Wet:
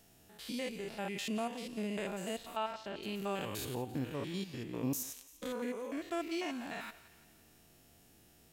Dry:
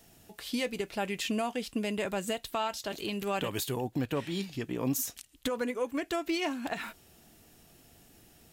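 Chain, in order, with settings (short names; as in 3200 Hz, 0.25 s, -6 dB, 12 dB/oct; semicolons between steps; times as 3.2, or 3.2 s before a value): stepped spectrum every 0.1 s; 2.57–3.03 LPF 3300 Hz 12 dB/oct; thinning echo 0.171 s, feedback 59%, high-pass 750 Hz, level -16 dB; gain -3.5 dB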